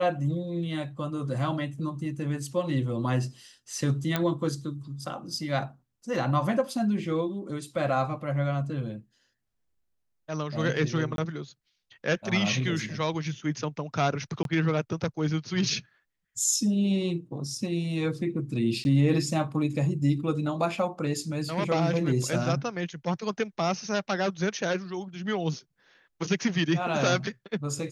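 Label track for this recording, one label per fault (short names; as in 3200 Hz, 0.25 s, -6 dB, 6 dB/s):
4.160000	4.160000	pop -11 dBFS
11.160000	11.180000	gap 22 ms
14.430000	14.450000	gap 22 ms
18.840000	18.850000	gap 11 ms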